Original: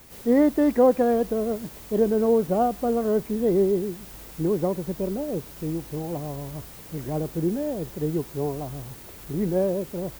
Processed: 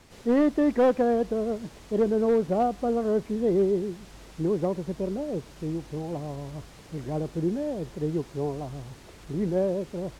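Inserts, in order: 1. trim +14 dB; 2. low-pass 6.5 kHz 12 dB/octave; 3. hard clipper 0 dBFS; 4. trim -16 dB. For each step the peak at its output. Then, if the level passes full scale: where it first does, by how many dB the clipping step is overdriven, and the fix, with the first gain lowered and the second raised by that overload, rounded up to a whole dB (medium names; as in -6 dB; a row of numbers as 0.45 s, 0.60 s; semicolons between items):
+5.0 dBFS, +5.0 dBFS, 0.0 dBFS, -16.0 dBFS; step 1, 5.0 dB; step 1 +9 dB, step 4 -11 dB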